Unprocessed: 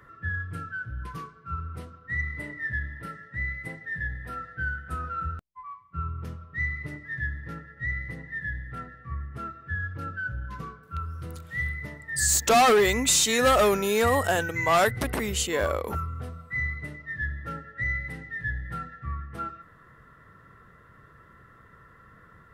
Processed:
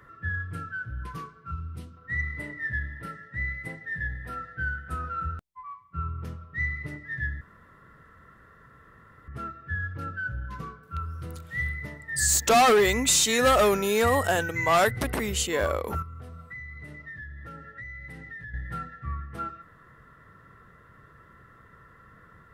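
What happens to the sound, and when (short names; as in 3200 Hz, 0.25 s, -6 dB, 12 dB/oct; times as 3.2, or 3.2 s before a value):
1.51–1.97 band shelf 930 Hz -8.5 dB 2.6 oct
7.41–9.28 room tone
16.02–18.54 compressor, threshold -38 dBFS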